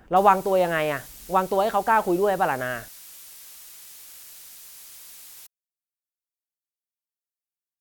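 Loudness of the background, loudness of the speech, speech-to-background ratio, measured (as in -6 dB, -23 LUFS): -41.5 LUFS, -22.5 LUFS, 19.0 dB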